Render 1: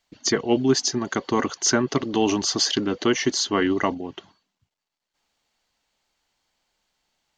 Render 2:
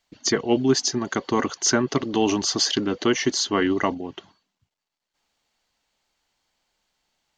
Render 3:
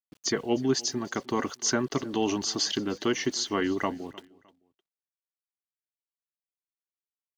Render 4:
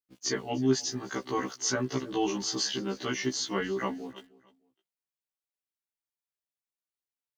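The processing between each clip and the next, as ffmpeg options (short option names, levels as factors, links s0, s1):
-af anull
-af "aeval=exprs='val(0)*gte(abs(val(0)),0.00501)':c=same,aecho=1:1:306|612:0.075|0.0247,volume=0.501"
-af "afftfilt=real='re*1.73*eq(mod(b,3),0)':imag='im*1.73*eq(mod(b,3),0)':win_size=2048:overlap=0.75"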